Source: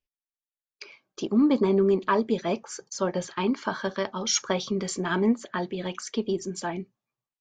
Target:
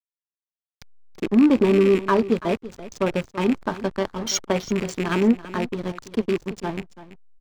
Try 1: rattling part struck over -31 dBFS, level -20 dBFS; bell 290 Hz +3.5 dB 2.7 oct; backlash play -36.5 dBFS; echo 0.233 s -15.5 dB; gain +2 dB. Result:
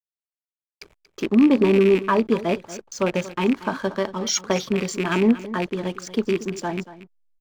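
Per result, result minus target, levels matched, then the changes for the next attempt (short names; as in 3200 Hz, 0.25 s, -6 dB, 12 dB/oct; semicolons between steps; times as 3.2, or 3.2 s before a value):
backlash: distortion -10 dB; echo 0.101 s early
change: backlash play -25.5 dBFS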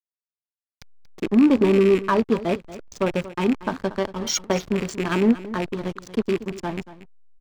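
echo 0.101 s early
change: echo 0.334 s -15.5 dB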